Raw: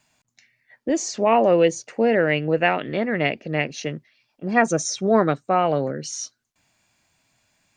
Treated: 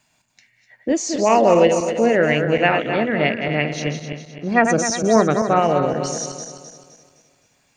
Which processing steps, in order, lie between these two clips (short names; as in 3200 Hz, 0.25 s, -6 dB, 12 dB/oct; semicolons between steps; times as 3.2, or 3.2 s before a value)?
regenerating reverse delay 0.129 s, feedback 64%, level -6 dB; gain +2 dB